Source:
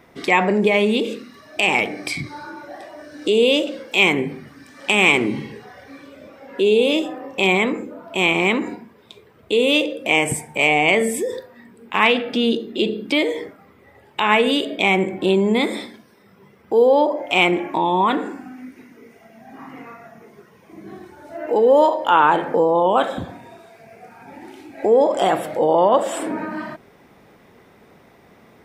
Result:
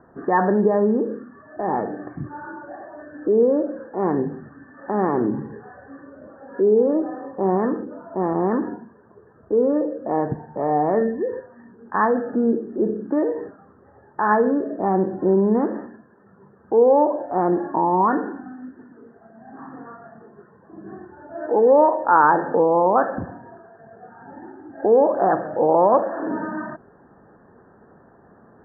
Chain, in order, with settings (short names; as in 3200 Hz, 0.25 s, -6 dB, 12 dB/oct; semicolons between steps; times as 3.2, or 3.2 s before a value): Chebyshev low-pass 1800 Hz, order 10